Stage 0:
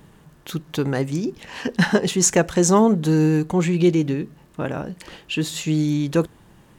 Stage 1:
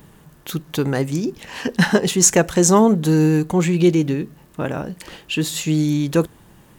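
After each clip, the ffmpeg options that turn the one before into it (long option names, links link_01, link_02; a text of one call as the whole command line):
ffmpeg -i in.wav -af "highshelf=frequency=11000:gain=10.5,volume=2dB" out.wav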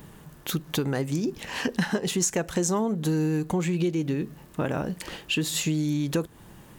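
ffmpeg -i in.wav -af "acompressor=threshold=-23dB:ratio=6" out.wav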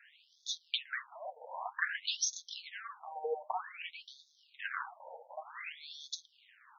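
ffmpeg -i in.wav -af "aeval=exprs='if(lt(val(0),0),0.251*val(0),val(0))':channel_layout=same,flanger=delay=4.1:depth=6.4:regen=37:speed=1.6:shape=triangular,afftfilt=real='re*between(b*sr/1024,660*pow(4800/660,0.5+0.5*sin(2*PI*0.53*pts/sr))/1.41,660*pow(4800/660,0.5+0.5*sin(2*PI*0.53*pts/sr))*1.41)':imag='im*between(b*sr/1024,660*pow(4800/660,0.5+0.5*sin(2*PI*0.53*pts/sr))/1.41,660*pow(4800/660,0.5+0.5*sin(2*PI*0.53*pts/sr))*1.41)':win_size=1024:overlap=0.75,volume=7dB" out.wav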